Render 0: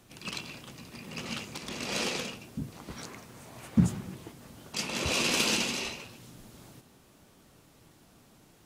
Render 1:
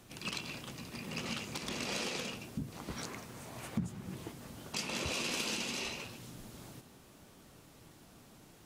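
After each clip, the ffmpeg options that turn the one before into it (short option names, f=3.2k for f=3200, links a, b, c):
-af "acompressor=threshold=-36dB:ratio=4,volume=1dB"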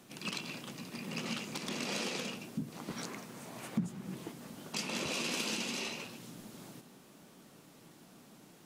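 -af "lowshelf=f=120:t=q:w=1.5:g=-12.5"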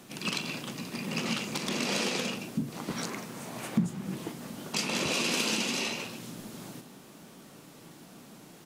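-filter_complex "[0:a]asplit=2[a][b];[b]adelay=41,volume=-13dB[c];[a][c]amix=inputs=2:normalize=0,volume=6.5dB"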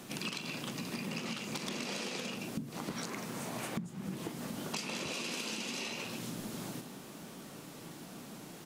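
-af "acompressor=threshold=-38dB:ratio=10,volume=2.5dB"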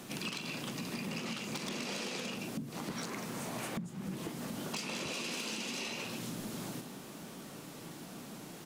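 -af "asoftclip=type=tanh:threshold=-30.5dB,volume=1dB"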